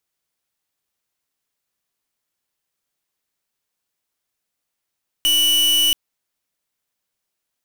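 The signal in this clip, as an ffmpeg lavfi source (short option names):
-f lavfi -i "aevalsrc='0.158*(2*lt(mod(2960*t,1),0.43)-1)':d=0.68:s=44100"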